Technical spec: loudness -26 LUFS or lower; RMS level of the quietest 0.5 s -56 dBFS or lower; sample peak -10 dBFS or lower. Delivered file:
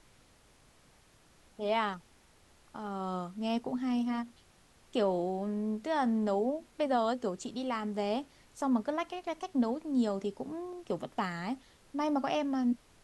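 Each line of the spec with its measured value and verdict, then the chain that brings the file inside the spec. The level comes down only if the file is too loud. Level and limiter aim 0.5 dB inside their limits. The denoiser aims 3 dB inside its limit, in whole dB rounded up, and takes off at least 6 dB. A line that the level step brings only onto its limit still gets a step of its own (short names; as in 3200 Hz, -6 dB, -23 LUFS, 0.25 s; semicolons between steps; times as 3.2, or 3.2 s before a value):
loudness -33.5 LUFS: OK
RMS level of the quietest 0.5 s -63 dBFS: OK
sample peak -17.0 dBFS: OK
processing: none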